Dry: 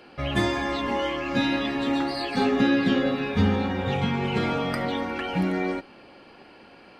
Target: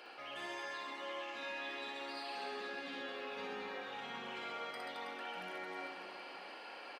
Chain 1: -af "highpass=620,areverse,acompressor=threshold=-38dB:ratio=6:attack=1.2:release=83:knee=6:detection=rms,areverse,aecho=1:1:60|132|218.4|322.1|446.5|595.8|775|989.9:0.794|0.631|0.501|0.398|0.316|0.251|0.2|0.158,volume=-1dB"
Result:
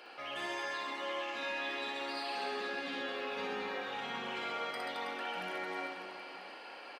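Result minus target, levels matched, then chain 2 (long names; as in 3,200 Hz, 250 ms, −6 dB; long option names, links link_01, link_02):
downward compressor: peak gain reduction −5.5 dB
-af "highpass=620,areverse,acompressor=threshold=-44.5dB:ratio=6:attack=1.2:release=83:knee=6:detection=rms,areverse,aecho=1:1:60|132|218.4|322.1|446.5|595.8|775|989.9:0.794|0.631|0.501|0.398|0.316|0.251|0.2|0.158,volume=-1dB"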